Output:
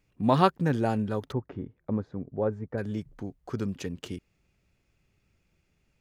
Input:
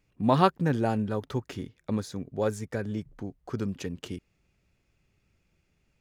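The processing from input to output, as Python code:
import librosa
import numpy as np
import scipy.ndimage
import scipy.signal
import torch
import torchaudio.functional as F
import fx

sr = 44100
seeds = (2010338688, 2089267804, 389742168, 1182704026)

y = fx.lowpass(x, sr, hz=1100.0, slope=12, at=(1.32, 2.78))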